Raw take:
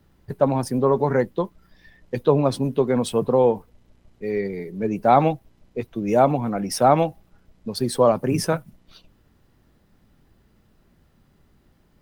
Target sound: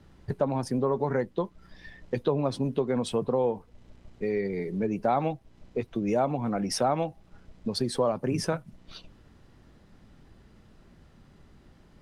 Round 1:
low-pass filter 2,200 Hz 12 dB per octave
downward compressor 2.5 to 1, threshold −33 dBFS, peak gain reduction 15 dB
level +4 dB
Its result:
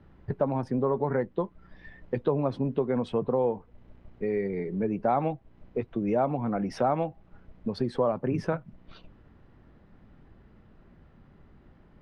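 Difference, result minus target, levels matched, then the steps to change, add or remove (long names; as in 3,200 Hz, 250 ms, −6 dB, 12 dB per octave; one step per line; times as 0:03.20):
8,000 Hz band −18.0 dB
change: low-pass filter 8,100 Hz 12 dB per octave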